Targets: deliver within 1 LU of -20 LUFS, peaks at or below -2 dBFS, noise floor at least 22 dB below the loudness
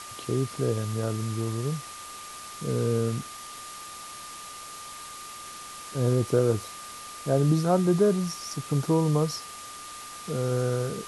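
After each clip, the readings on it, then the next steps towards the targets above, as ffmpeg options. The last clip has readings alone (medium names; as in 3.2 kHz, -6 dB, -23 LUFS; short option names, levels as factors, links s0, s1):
steady tone 1.2 kHz; tone level -42 dBFS; noise floor -42 dBFS; noise floor target -49 dBFS; loudness -27.0 LUFS; peak level -10.5 dBFS; loudness target -20.0 LUFS
-> -af "bandreject=f=1200:w=30"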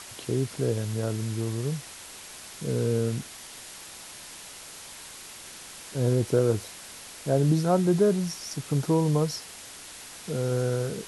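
steady tone not found; noise floor -44 dBFS; noise floor target -49 dBFS
-> -af "afftdn=nr=6:nf=-44"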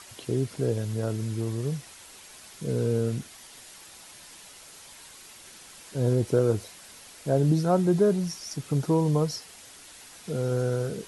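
noise floor -49 dBFS; loudness -27.0 LUFS; peak level -10.5 dBFS; loudness target -20.0 LUFS
-> -af "volume=2.24"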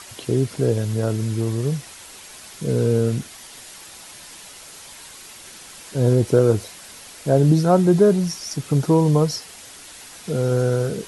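loudness -20.0 LUFS; peak level -3.5 dBFS; noise floor -42 dBFS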